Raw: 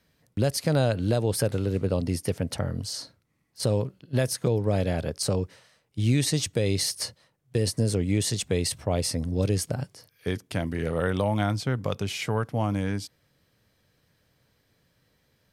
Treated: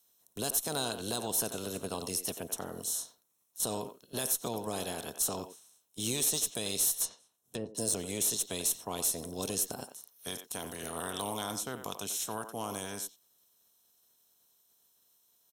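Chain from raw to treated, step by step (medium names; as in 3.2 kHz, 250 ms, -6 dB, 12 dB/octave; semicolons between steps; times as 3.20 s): spectral peaks clipped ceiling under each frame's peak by 19 dB; Butterworth band-stop 4.7 kHz, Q 5.8; pre-emphasis filter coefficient 0.9; small resonant body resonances 210/420/690/980 Hz, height 6 dB, ringing for 20 ms; speakerphone echo 90 ms, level -9 dB; 7.05–7.75 s: low-pass that closes with the level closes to 430 Hz, closed at -29.5 dBFS; valve stage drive 23 dB, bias 0.2; peaking EQ 2.1 kHz -14 dB 0.82 oct; trim +3 dB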